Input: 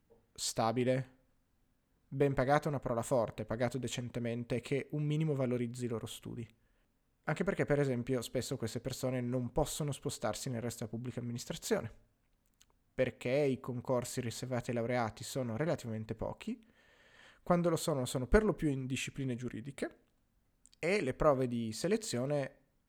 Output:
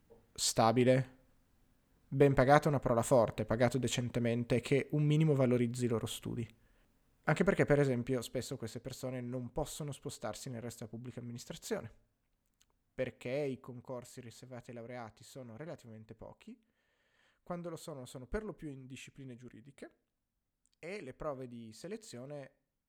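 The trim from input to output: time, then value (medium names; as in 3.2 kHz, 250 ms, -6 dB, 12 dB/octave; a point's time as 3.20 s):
7.53 s +4 dB
8.73 s -5 dB
13.40 s -5 dB
14.07 s -12 dB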